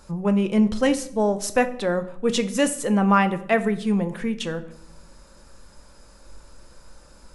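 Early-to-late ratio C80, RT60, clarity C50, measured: 18.0 dB, 0.75 s, 15.0 dB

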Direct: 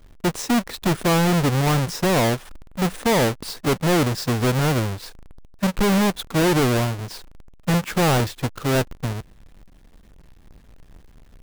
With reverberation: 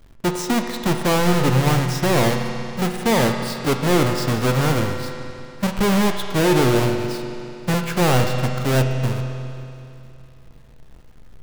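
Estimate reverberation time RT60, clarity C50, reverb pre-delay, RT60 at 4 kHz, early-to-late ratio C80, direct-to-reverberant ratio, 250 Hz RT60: 2.8 s, 5.0 dB, 8 ms, 2.8 s, 5.5 dB, 3.5 dB, 2.8 s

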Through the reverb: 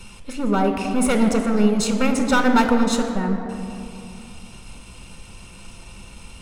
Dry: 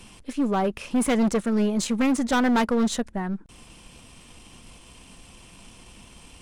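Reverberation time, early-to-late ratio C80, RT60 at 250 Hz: 2.7 s, 7.5 dB, 3.0 s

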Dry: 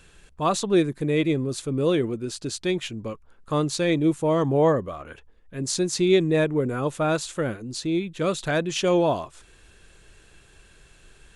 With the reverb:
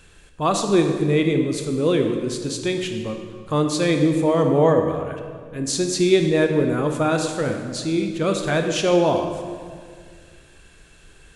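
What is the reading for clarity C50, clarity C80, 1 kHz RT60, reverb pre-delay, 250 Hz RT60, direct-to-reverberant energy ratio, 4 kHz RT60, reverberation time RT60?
5.5 dB, 7.0 dB, 1.8 s, 16 ms, 2.4 s, 4.5 dB, 1.5 s, 2.0 s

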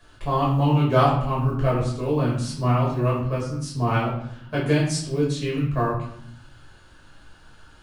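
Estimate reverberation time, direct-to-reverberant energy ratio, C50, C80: 0.70 s, −6.5 dB, 4.0 dB, 7.0 dB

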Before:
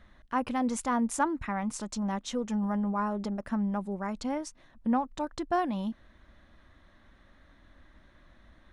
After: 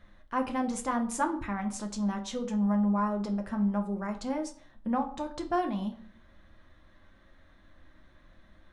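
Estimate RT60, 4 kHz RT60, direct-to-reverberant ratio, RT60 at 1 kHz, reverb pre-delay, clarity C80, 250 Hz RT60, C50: 0.50 s, 0.35 s, 3.5 dB, 0.50 s, 6 ms, 17.0 dB, 0.60 s, 12.5 dB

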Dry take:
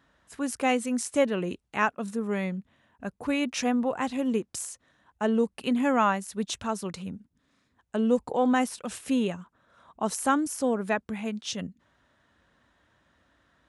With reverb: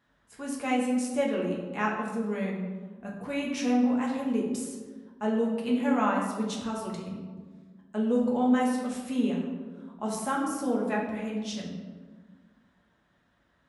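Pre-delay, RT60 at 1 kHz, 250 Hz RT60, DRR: 5 ms, 1.3 s, 2.0 s, −3.0 dB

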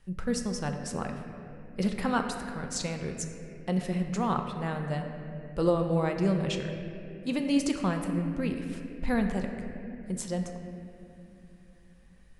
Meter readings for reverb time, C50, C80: 2.8 s, 5.5 dB, 6.5 dB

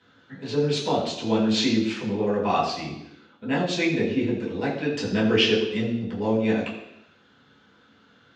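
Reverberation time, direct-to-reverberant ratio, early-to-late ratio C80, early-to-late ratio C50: 0.85 s, −7.5 dB, 7.0 dB, 5.0 dB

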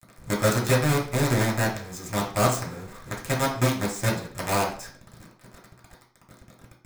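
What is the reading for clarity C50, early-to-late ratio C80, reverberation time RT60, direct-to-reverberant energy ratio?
7.0 dB, 11.5 dB, 0.45 s, −4.0 dB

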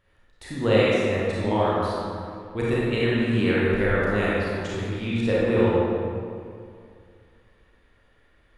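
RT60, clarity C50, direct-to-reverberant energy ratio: 2.3 s, −4.5 dB, −8.0 dB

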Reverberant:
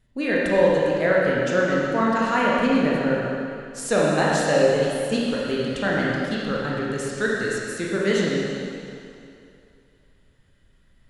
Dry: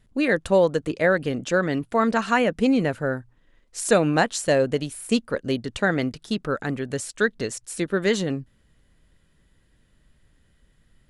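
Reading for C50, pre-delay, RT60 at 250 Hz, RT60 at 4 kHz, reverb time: −2.5 dB, 19 ms, 2.4 s, 2.3 s, 2.6 s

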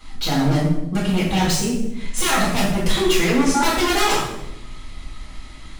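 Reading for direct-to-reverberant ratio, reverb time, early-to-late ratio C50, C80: −10.0 dB, 0.90 s, 2.0 dB, 5.0 dB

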